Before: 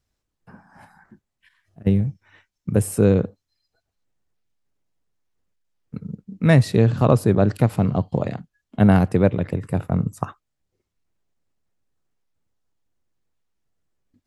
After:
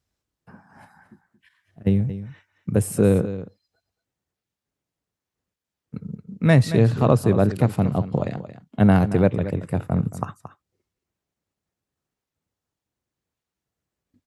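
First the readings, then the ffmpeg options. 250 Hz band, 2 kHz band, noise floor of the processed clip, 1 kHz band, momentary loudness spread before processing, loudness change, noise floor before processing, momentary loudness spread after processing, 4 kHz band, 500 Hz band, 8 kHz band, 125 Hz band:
-1.0 dB, -1.0 dB, under -85 dBFS, -1.0 dB, 19 LU, -1.0 dB, -80 dBFS, 19 LU, -1.0 dB, -1.0 dB, -1.0 dB, -1.0 dB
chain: -filter_complex "[0:a]highpass=54,asplit=2[a][b];[b]aecho=0:1:226:0.224[c];[a][c]amix=inputs=2:normalize=0,volume=-1dB"

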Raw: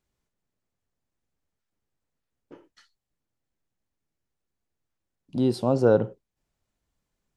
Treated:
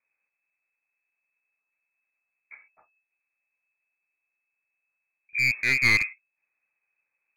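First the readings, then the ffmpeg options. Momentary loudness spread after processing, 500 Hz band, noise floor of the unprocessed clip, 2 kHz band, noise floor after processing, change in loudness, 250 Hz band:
12 LU, -24.0 dB, -84 dBFS, +22.0 dB, -84 dBFS, +1.5 dB, -16.0 dB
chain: -af "aeval=exprs='0.473*(cos(1*acos(clip(val(0)/0.473,-1,1)))-cos(1*PI/2))+0.0168*(cos(6*acos(clip(val(0)/0.473,-1,1)))-cos(6*PI/2))':c=same,lowpass=f=2.2k:t=q:w=0.5098,lowpass=f=2.2k:t=q:w=0.6013,lowpass=f=2.2k:t=q:w=0.9,lowpass=f=2.2k:t=q:w=2.563,afreqshift=-2600,aeval=exprs='clip(val(0),-1,0.0841)':c=same"

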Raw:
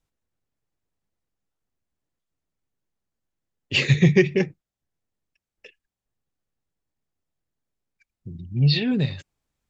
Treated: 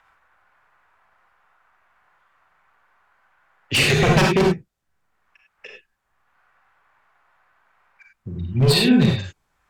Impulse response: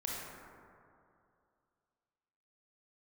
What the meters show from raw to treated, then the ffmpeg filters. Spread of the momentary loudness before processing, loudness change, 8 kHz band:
15 LU, +3.0 dB, n/a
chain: -filter_complex "[0:a]acrossover=split=270|1000|1700[a][b][c][d];[c]acompressor=mode=upward:threshold=-43dB:ratio=2.5[e];[a][b][e][d]amix=inputs=4:normalize=0,aeval=exprs='0.158*(abs(mod(val(0)/0.158+3,4)-2)-1)':c=same[f];[1:a]atrim=start_sample=2205,atrim=end_sample=3528,asetrate=32634,aresample=44100[g];[f][g]afir=irnorm=-1:irlink=0,volume=6dB"

